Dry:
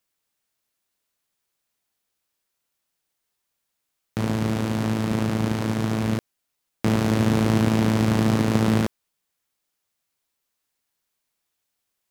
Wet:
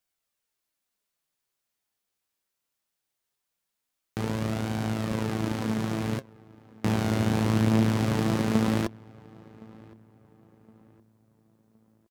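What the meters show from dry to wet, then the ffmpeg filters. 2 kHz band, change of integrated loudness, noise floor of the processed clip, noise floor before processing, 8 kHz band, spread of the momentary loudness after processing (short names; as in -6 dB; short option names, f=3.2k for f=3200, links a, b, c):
-4.0 dB, -4.5 dB, -83 dBFS, -79 dBFS, -4.5 dB, 9 LU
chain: -filter_complex "[0:a]flanger=delay=1.3:depth=9.2:regen=60:speed=0.21:shape=sinusoidal,asplit=2[a][b];[b]adelay=1066,lowpass=f=1.9k:p=1,volume=-23dB,asplit=2[c][d];[d]adelay=1066,lowpass=f=1.9k:p=1,volume=0.4,asplit=2[e][f];[f]adelay=1066,lowpass=f=1.9k:p=1,volume=0.4[g];[c][e][g]amix=inputs=3:normalize=0[h];[a][h]amix=inputs=2:normalize=0"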